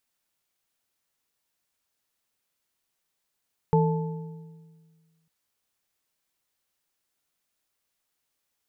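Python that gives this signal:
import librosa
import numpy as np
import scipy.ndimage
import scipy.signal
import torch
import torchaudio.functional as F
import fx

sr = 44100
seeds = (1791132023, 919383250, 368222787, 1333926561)

y = fx.strike_metal(sr, length_s=1.55, level_db=-18, body='bar', hz=162.0, decay_s=1.77, tilt_db=2.5, modes=3)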